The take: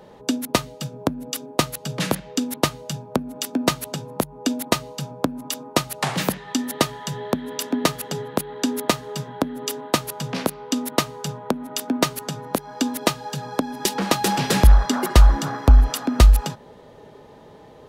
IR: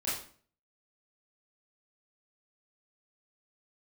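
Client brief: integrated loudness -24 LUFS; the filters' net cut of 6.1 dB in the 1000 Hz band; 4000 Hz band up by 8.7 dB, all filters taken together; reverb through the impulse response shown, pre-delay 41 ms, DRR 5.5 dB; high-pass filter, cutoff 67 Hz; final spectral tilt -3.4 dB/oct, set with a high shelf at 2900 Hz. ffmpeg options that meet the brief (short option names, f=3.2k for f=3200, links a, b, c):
-filter_complex "[0:a]highpass=67,equalizer=f=1k:t=o:g=-9,highshelf=f=2.9k:g=3.5,equalizer=f=4k:t=o:g=8.5,asplit=2[a][b];[1:a]atrim=start_sample=2205,adelay=41[c];[b][c]afir=irnorm=-1:irlink=0,volume=-11dB[d];[a][d]amix=inputs=2:normalize=0,volume=-3dB"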